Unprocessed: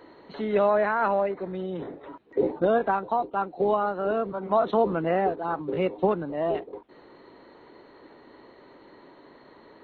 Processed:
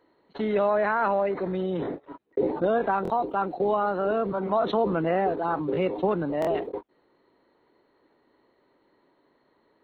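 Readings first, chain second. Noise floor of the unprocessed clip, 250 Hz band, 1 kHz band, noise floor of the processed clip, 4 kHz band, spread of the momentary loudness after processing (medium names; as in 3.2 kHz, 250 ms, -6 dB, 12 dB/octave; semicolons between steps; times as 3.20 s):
-53 dBFS, +1.5 dB, 0.0 dB, -67 dBFS, no reading, 8 LU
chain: gate -38 dBFS, range -52 dB; buffer glitch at 3.03/6.40 s, samples 1024, times 2; level flattener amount 50%; trim -2.5 dB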